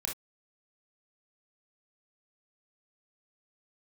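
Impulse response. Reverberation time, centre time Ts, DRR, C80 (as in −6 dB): non-exponential decay, 22 ms, −0.5 dB, 30.5 dB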